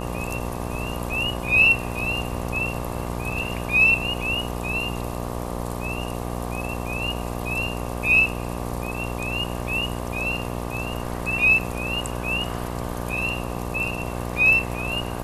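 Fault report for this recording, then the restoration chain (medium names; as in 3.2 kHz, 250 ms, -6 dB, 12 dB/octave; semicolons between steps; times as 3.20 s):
buzz 60 Hz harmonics 20 -30 dBFS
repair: de-hum 60 Hz, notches 20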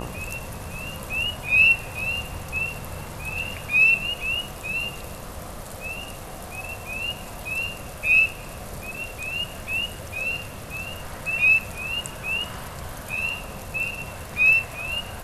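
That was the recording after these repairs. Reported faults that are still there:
nothing left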